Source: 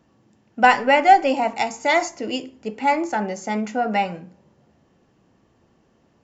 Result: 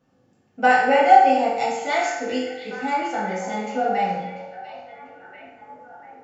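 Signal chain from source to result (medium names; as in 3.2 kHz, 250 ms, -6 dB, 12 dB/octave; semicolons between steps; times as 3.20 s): repeats whose band climbs or falls 692 ms, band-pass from 3.5 kHz, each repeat -0.7 oct, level -9.5 dB; reverberation RT60 1.0 s, pre-delay 3 ms, DRR -8 dB; trim -10.5 dB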